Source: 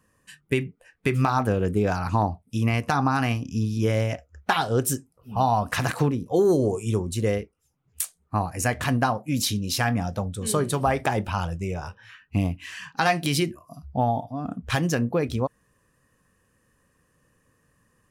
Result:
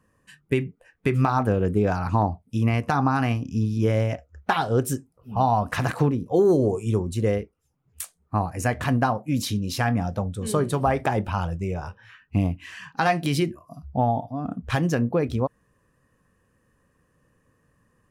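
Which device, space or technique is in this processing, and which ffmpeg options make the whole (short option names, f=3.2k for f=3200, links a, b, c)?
behind a face mask: -af "highshelf=f=2.3k:g=-8,volume=1.5dB"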